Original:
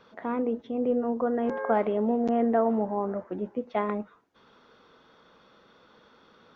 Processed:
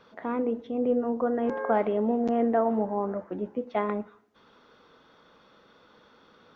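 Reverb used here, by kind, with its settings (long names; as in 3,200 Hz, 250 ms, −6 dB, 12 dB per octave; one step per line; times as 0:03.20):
feedback delay network reverb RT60 0.73 s, low-frequency decay 1.05×, high-frequency decay 0.9×, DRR 16.5 dB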